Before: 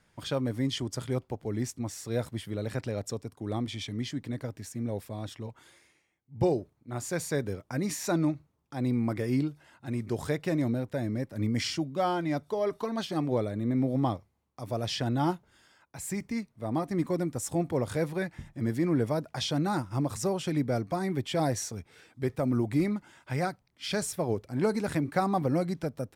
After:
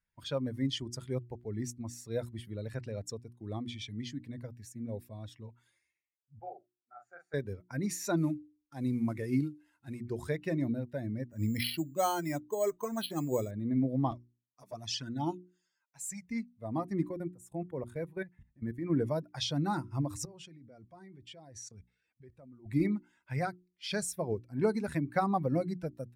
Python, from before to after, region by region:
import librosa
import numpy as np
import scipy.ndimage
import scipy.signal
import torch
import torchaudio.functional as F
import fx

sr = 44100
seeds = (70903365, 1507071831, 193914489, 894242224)

y = fx.chain(x, sr, fx.double_bandpass(hz=1000.0, octaves=0.79),
    fx.doubler(ms=40.0, db=-4.5), at=(6.39, 7.34))
y = fx.chain(y, sr, fx.cvsd(bps=64000),
    fx.high_shelf(hz=9100.0, db=3.5), at=(8.17, 10.0))
y = fx.chain(y, sr, fx.dynamic_eq(hz=3400.0, q=1.4, threshold_db=-51.0, ratio=4.0, max_db=6),
    fx.resample_bad(factor=6, down='filtered', up='hold'), at=(11.25, 13.51))
y = fx.chain(y, sr, fx.highpass(hz=150.0, slope=6),
    fx.peak_eq(hz=6600.0, db=7.0, octaves=0.83),
    fx.env_flanger(rest_ms=11.5, full_db=-25.0), at=(14.11, 16.25))
y = fx.chain(y, sr, fx.highpass(hz=55.0, slope=12),
    fx.level_steps(step_db=15),
    fx.peak_eq(hz=5200.0, db=-7.0, octaves=0.81), at=(17.09, 18.9))
y = fx.chain(y, sr, fx.lowpass(hz=9900.0, slope=12),
    fx.level_steps(step_db=21), at=(20.25, 22.66))
y = fx.bin_expand(y, sr, power=1.5)
y = fx.hum_notches(y, sr, base_hz=60, count=6)